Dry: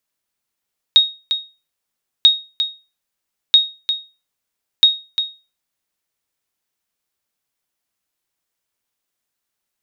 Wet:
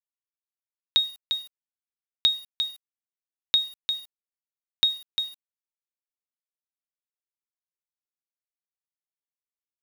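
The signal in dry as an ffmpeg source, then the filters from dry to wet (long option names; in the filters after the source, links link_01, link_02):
-f lavfi -i "aevalsrc='0.794*(sin(2*PI*3750*mod(t,1.29))*exp(-6.91*mod(t,1.29)/0.3)+0.335*sin(2*PI*3750*max(mod(t,1.29)-0.35,0))*exp(-6.91*max(mod(t,1.29)-0.35,0)/0.3))':duration=5.16:sample_rate=44100"
-af "lowshelf=frequency=160:gain=5,acompressor=threshold=-36dB:ratio=1.5,acrusher=bits=7:mix=0:aa=0.000001"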